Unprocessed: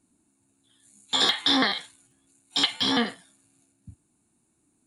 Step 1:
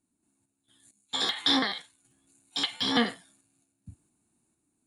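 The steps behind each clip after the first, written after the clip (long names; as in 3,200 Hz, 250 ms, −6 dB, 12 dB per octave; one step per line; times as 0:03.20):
sample-and-hold tremolo 4.4 Hz, depth 80%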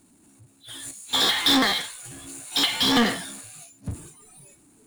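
noise reduction from a noise print of the clip's start 25 dB
power curve on the samples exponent 0.5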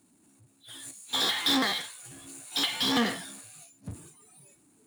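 high-pass filter 91 Hz
level −6 dB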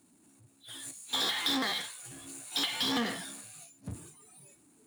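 downward compressor 2.5 to 1, threshold −30 dBFS, peak gain reduction 6 dB
mains-hum notches 50/100/150/200 Hz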